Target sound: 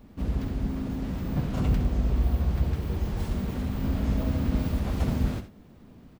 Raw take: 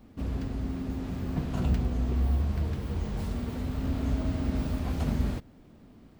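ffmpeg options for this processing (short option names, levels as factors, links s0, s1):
-filter_complex "[0:a]asplit=2[s0][s1];[s1]asetrate=35002,aresample=44100,atempo=1.25992,volume=0.891[s2];[s0][s2]amix=inputs=2:normalize=0,aecho=1:1:64|84:0.266|0.158"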